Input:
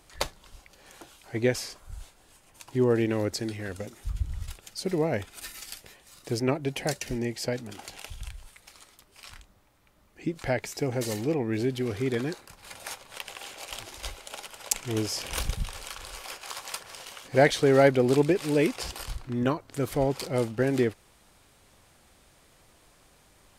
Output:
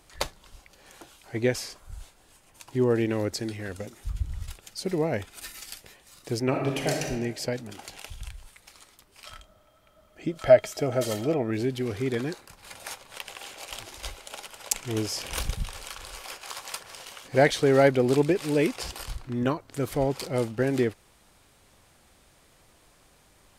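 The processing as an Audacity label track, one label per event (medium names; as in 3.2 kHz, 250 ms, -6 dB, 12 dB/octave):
6.480000	7.020000	reverb throw, RT60 1.3 s, DRR 0.5 dB
9.260000	11.510000	small resonant body resonances 630/1300/3200 Hz, height 17 dB, ringing for 65 ms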